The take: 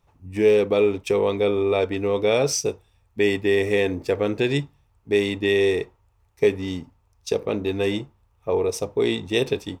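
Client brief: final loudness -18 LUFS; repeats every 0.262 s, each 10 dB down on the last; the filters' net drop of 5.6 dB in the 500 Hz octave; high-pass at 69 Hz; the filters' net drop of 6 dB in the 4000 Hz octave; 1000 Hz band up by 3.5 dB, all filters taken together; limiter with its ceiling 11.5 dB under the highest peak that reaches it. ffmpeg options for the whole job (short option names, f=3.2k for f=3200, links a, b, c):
-af "highpass=69,equalizer=f=500:t=o:g=-8.5,equalizer=f=1k:t=o:g=8,equalizer=f=4k:t=o:g=-8,alimiter=limit=-21.5dB:level=0:latency=1,aecho=1:1:262|524|786|1048:0.316|0.101|0.0324|0.0104,volume=14.5dB"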